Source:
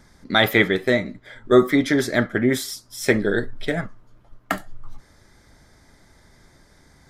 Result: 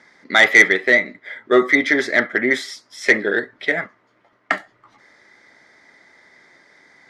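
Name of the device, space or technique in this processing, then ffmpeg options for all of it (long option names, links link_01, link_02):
intercom: -af "highpass=340,lowpass=5000,equalizer=frequency=2000:width_type=o:width=0.39:gain=11,asoftclip=type=tanh:threshold=-4dB,volume=2.5dB"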